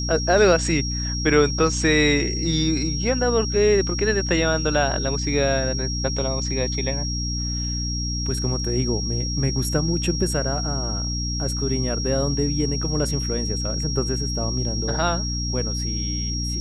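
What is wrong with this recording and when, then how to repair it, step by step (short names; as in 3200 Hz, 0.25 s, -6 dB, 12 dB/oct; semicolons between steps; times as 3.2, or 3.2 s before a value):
hum 60 Hz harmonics 5 -27 dBFS
tone 5600 Hz -28 dBFS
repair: notch 5600 Hz, Q 30; de-hum 60 Hz, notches 5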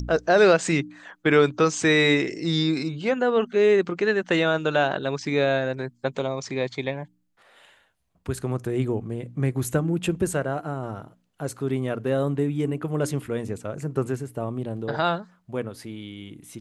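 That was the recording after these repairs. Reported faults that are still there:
none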